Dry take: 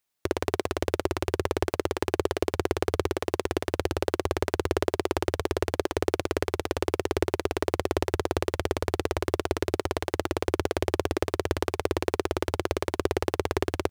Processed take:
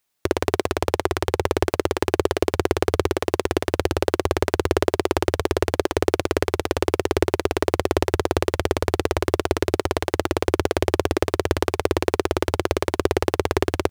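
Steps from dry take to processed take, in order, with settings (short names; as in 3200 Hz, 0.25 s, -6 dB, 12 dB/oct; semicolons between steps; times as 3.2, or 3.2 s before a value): 0.72–1.45 Doppler distortion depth 0.43 ms; gain +6 dB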